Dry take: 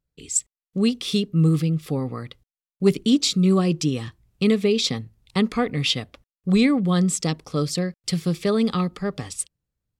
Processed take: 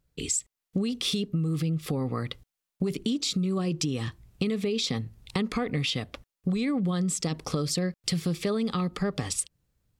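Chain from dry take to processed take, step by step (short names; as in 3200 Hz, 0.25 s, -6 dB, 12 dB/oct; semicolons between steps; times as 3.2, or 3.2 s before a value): in parallel at -1.5 dB: vocal rider within 3 dB 0.5 s; on the sum: limiter -12.5 dBFS, peak gain reduction 11.5 dB; compressor 5:1, threshold -28 dBFS, peak gain reduction 11.5 dB; gain +2 dB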